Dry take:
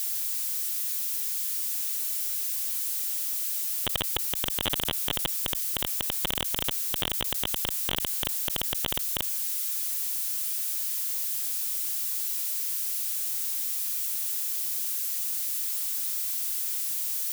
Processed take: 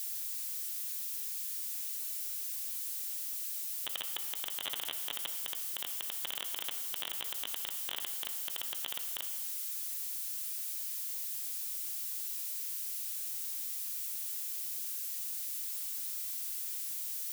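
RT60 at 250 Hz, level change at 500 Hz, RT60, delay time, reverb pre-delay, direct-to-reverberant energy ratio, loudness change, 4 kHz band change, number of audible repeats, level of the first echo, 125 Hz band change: 1.6 s, -15.0 dB, 1.6 s, no echo, 9 ms, 6.0 dB, -8.5 dB, -8.5 dB, no echo, no echo, under -25 dB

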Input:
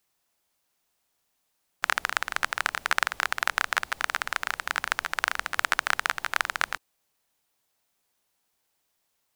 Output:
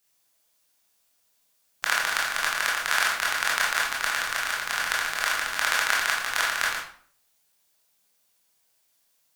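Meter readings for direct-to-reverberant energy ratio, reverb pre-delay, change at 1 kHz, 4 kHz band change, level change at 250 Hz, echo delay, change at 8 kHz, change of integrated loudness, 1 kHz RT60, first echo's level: -4.5 dB, 18 ms, +1.0 dB, +5.0 dB, +0.5 dB, no echo, +7.0 dB, +3.0 dB, 0.50 s, no echo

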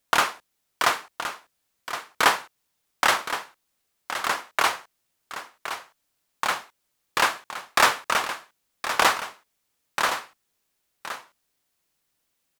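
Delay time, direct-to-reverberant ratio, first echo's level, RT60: 1068 ms, no reverb, -10.5 dB, no reverb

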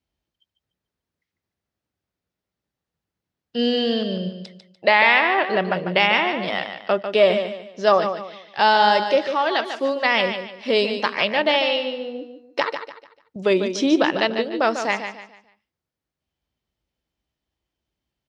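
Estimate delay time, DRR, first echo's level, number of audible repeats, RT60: 147 ms, no reverb, -8.5 dB, 3, no reverb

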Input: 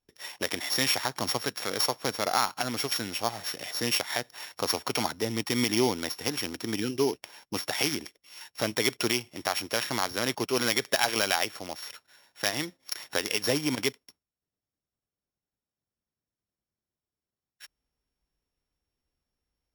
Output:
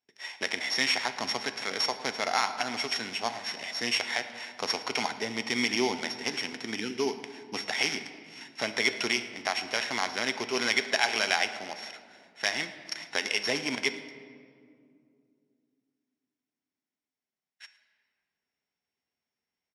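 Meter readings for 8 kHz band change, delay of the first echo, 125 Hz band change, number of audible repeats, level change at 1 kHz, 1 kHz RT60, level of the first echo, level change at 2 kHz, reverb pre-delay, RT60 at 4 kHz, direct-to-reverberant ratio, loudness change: -4.5 dB, 111 ms, -10.5 dB, 1, -0.5 dB, 2.0 s, -20.5 dB, +3.0 dB, 3 ms, 1.2 s, 9.0 dB, -1.0 dB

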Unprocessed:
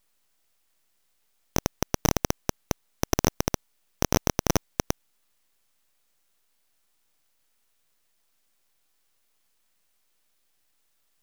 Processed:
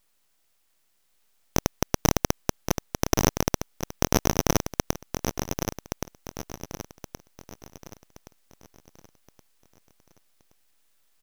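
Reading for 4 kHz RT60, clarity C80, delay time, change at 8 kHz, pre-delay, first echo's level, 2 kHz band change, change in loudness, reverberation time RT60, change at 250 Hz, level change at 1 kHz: no reverb, no reverb, 1122 ms, +2.5 dB, no reverb, -7.0 dB, +2.5 dB, +0.5 dB, no reverb, +2.5 dB, +2.5 dB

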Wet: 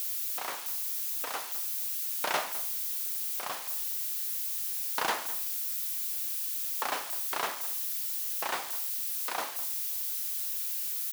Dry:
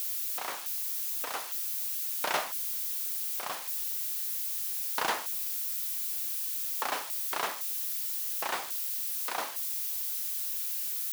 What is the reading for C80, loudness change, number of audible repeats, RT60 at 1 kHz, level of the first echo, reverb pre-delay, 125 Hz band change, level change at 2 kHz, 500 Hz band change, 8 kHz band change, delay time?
no reverb, 0.0 dB, 1, no reverb, -16.5 dB, no reverb, no reading, 0.0 dB, 0.0 dB, 0.0 dB, 206 ms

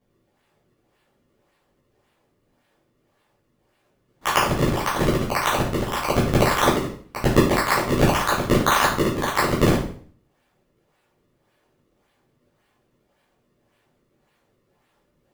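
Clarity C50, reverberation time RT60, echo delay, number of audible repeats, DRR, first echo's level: 4.0 dB, 0.50 s, no echo, no echo, -10.5 dB, no echo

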